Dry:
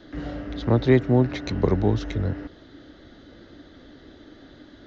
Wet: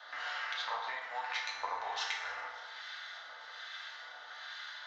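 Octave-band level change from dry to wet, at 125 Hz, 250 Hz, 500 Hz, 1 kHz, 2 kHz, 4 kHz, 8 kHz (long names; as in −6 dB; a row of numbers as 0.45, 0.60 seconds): below −40 dB, below −40 dB, −25.5 dB, −2.0 dB, +0.5 dB, +1.5 dB, can't be measured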